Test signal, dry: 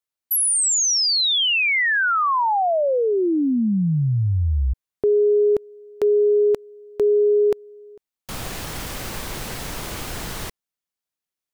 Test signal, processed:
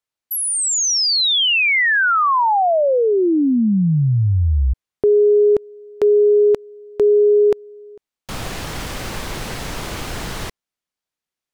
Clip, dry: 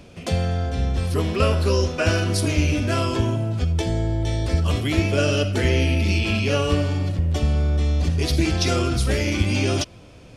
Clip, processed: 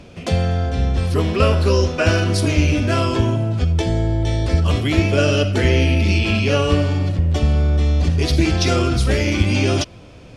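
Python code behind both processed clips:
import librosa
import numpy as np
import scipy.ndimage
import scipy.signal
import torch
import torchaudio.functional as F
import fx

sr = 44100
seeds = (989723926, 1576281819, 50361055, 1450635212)

y = fx.high_shelf(x, sr, hz=9900.0, db=-11.0)
y = y * librosa.db_to_amplitude(4.0)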